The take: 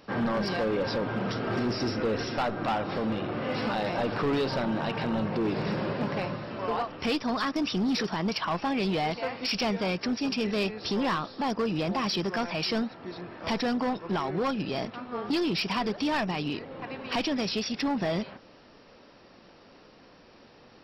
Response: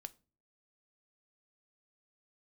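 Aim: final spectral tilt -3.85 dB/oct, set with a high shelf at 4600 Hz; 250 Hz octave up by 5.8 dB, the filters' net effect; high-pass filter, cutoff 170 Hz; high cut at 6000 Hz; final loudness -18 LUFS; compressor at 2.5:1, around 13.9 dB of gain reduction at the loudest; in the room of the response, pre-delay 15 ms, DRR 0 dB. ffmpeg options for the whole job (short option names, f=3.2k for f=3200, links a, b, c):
-filter_complex "[0:a]highpass=170,lowpass=6k,equalizer=f=250:t=o:g=8,highshelf=f=4.6k:g=7.5,acompressor=threshold=-41dB:ratio=2.5,asplit=2[a][b];[1:a]atrim=start_sample=2205,adelay=15[c];[b][c]afir=irnorm=-1:irlink=0,volume=5.5dB[d];[a][d]amix=inputs=2:normalize=0,volume=17dB"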